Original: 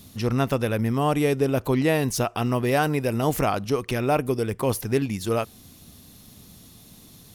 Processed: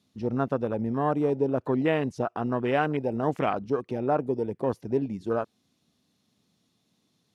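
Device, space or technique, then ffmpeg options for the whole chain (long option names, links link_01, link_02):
over-cleaned archive recording: -af "highpass=160,lowpass=6000,afwtdn=0.0355,volume=-2.5dB"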